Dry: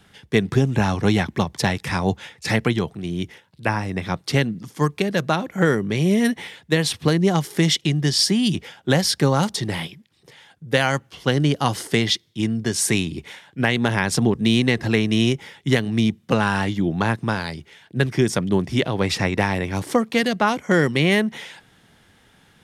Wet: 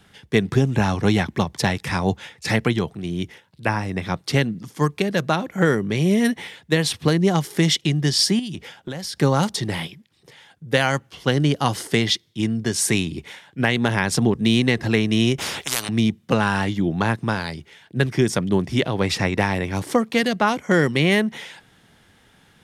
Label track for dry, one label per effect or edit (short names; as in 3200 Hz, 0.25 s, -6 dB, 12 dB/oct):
8.390000	9.170000	compressor 12:1, threshold -26 dBFS
15.380000	15.890000	spectral compressor 10:1